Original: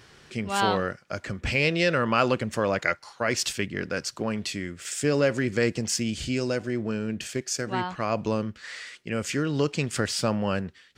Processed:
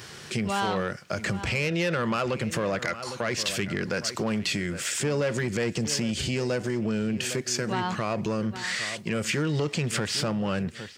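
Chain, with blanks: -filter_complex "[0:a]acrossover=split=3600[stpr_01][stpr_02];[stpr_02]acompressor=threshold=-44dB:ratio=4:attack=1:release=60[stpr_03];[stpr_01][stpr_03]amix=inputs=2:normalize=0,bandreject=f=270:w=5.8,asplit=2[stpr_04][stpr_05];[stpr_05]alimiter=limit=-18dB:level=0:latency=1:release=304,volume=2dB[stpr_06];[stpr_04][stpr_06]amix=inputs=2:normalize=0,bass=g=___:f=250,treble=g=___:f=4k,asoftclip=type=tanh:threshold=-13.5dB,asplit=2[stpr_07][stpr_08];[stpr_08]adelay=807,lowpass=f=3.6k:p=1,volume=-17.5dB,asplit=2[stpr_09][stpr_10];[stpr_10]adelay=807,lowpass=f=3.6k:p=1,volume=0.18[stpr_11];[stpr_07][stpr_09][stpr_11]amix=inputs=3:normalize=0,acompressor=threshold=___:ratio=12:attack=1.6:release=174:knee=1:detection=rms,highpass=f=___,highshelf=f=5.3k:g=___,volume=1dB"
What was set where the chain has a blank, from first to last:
3, 1, -23dB, 100, 7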